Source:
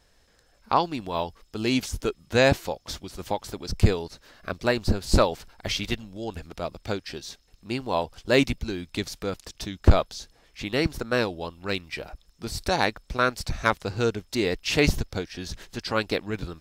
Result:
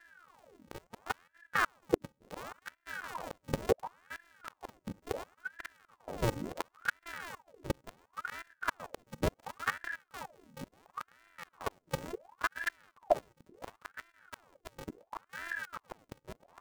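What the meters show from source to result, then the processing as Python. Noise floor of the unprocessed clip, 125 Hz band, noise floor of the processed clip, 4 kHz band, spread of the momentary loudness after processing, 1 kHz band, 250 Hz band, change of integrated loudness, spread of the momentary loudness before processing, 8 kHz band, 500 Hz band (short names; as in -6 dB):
-62 dBFS, -17.0 dB, -79 dBFS, -18.0 dB, 18 LU, -10.0 dB, -16.0 dB, -12.0 dB, 15 LU, -13.5 dB, -12.5 dB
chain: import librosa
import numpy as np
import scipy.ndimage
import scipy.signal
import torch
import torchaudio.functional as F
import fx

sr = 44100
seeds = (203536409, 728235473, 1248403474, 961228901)

y = np.r_[np.sort(x[:len(x) // 128 * 128].reshape(-1, 128), axis=1).ravel(), x[len(x) // 128 * 128:]]
y = fx.room_early_taps(y, sr, ms=(39, 64), db=(-17.5, -17.0))
y = fx.gate_flip(y, sr, shuts_db=-20.0, range_db=-29)
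y = fx.level_steps(y, sr, step_db=16)
y = fx.leveller(y, sr, passes=1)
y = fx.low_shelf(y, sr, hz=180.0, db=10.5)
y = fx.ring_lfo(y, sr, carrier_hz=950.0, swing_pct=80, hz=0.71)
y = F.gain(torch.from_numpy(y), 1.0).numpy()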